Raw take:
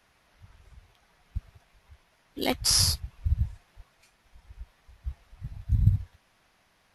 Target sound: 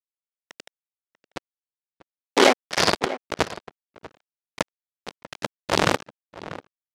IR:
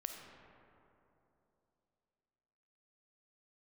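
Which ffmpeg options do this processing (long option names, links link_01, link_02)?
-filter_complex "[0:a]asettb=1/sr,asplit=3[link_01][link_02][link_03];[link_01]atrim=end=1.374[link_04];[link_02]atrim=start=1.37:end=3.45,asetpts=PTS-STARTPTS,afade=type=in:duration=0.004:curve=qsin,afade=type=out:start_time=2.076:duration=0.004:curve=qsin,aemphasis=mode=reproduction:type=75fm[link_05];[link_03]atrim=start=3.446[link_06];[link_04][link_05]acrossfade=duration=0.004:curve1=hsin:curve2=qsin[link_07];[link_07][link_06]acrossfade=duration=0.004:curve1=qsin:curve2=hsin,acrossover=split=2700[link_08][link_09];[link_09]acompressor=threshold=-53dB:ratio=4:attack=1:release=60[link_10];[link_08][link_10]amix=inputs=2:normalize=0,equalizer=frequency=1100:width_type=o:width=0.72:gain=-10,aecho=1:1:5:0.46,acompressor=threshold=-40dB:ratio=2,aeval=exprs='sgn(val(0))*max(abs(val(0))-0.00168,0)':channel_layout=same,acrusher=bits=7:dc=4:mix=0:aa=0.000001,tremolo=f=1.7:d=0.99,aeval=exprs='sgn(val(0))*max(abs(val(0))-0.00237,0)':channel_layout=same,highpass=450,lowpass=6300,asplit=2[link_11][link_12];[link_12]adelay=641.4,volume=-18dB,highshelf=frequency=4000:gain=-14.4[link_13];[link_11][link_13]amix=inputs=2:normalize=0,alimiter=level_in=35.5dB:limit=-1dB:release=50:level=0:latency=1,volume=-1dB"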